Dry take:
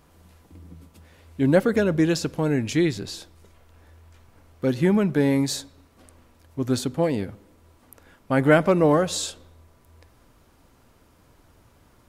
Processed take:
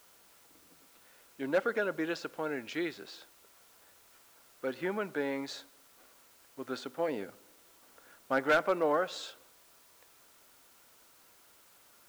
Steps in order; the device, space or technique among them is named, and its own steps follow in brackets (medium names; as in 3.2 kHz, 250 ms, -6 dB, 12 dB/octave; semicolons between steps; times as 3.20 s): 7.08–8.39 s: bass shelf 500 Hz +6 dB; drive-through speaker (band-pass 470–3500 Hz; peaking EQ 1.4 kHz +7 dB 0.24 oct; hard clipper -12.5 dBFS, distortion -16 dB; white noise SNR 25 dB); trim -7 dB